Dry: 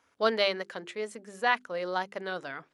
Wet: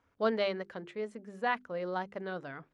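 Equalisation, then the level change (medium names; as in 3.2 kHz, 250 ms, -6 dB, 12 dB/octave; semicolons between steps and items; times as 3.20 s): low-pass 2 kHz 6 dB/octave; bass shelf 75 Hz +9.5 dB; bass shelf 230 Hz +9.5 dB; -4.5 dB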